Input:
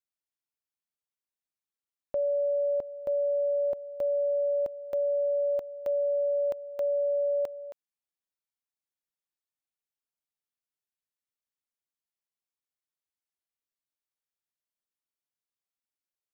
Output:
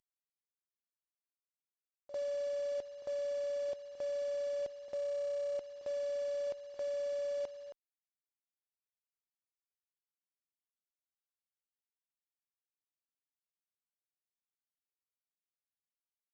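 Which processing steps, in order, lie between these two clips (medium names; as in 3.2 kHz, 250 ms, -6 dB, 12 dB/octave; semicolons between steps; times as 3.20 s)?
CVSD coder 32 kbps; pre-echo 50 ms -15.5 dB; Chebyshev shaper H 5 -31 dB, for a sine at -23 dBFS; trim -8 dB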